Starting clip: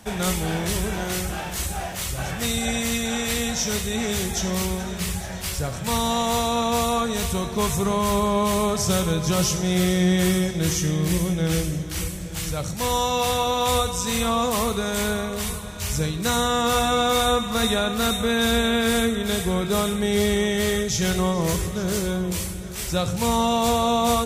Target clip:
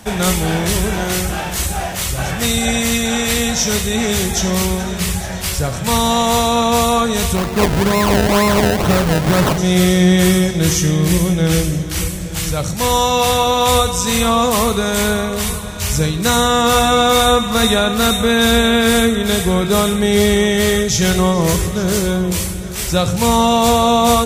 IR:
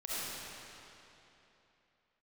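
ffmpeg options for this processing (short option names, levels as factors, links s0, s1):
-filter_complex "[0:a]asplit=3[s0][s1][s2];[s0]afade=t=out:st=7.35:d=0.02[s3];[s1]acrusher=samples=27:mix=1:aa=0.000001:lfo=1:lforange=27:lforate=2.1,afade=t=in:st=7.35:d=0.02,afade=t=out:st=9.57:d=0.02[s4];[s2]afade=t=in:st=9.57:d=0.02[s5];[s3][s4][s5]amix=inputs=3:normalize=0,volume=2.51"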